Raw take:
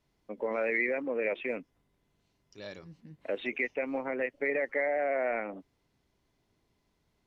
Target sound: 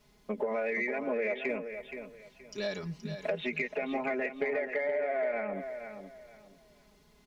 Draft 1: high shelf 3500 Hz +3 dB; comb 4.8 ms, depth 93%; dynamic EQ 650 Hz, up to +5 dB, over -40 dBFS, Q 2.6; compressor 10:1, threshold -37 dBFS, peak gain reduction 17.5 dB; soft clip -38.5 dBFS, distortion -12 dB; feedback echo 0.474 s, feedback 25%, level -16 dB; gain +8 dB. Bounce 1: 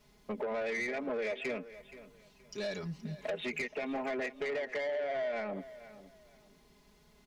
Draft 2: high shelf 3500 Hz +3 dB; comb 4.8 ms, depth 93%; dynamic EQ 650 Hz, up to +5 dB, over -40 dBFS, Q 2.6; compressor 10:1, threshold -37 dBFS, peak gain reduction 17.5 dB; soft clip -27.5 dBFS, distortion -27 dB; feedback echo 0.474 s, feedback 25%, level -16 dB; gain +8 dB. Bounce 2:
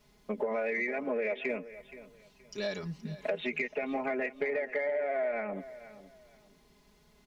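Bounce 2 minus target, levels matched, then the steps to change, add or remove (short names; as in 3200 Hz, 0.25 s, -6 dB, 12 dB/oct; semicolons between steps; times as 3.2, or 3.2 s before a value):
echo-to-direct -7 dB
change: feedback echo 0.474 s, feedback 25%, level -9 dB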